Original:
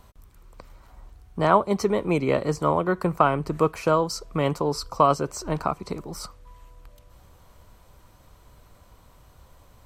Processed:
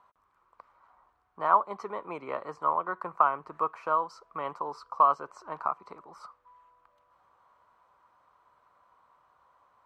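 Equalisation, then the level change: band-pass 1100 Hz, Q 2.7; 0.0 dB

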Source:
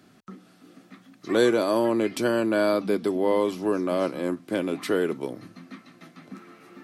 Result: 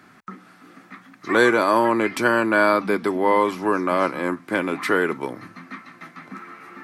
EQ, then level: band shelf 1400 Hz +10 dB; +2.0 dB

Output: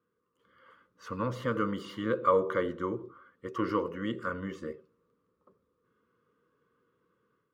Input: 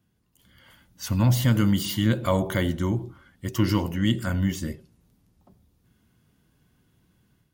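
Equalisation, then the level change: double band-pass 750 Hz, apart 1.3 oct; +8.0 dB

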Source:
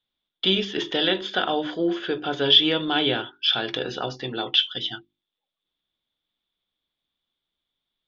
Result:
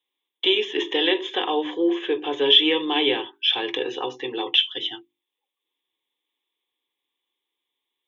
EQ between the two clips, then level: HPF 270 Hz 12 dB/oct; fixed phaser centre 960 Hz, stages 8; notch 1300 Hz, Q 18; +5.0 dB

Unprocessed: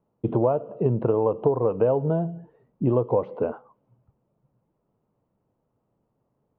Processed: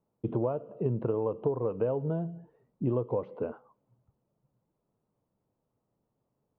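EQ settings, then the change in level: dynamic EQ 760 Hz, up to -5 dB, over -37 dBFS, Q 1.5; -6.5 dB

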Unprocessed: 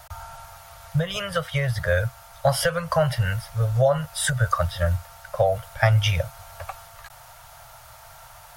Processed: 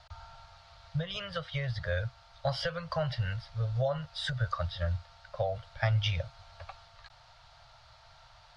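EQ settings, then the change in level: ladder low-pass 4900 Hz, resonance 55%; low shelf 140 Hz +5 dB; -2.0 dB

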